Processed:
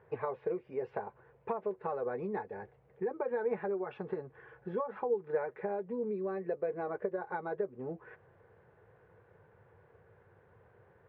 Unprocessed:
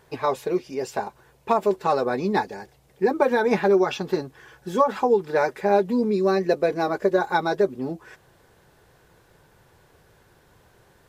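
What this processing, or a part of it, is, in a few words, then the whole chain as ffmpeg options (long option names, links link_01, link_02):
bass amplifier: -af "acompressor=threshold=-28dB:ratio=5,highpass=73,equalizer=frequency=100:width_type=q:width=4:gain=8,equalizer=frequency=280:width_type=q:width=4:gain=-8,equalizer=frequency=470:width_type=q:width=4:gain=8,lowpass=frequency=2100:width=0.5412,lowpass=frequency=2100:width=1.3066,volume=-7dB"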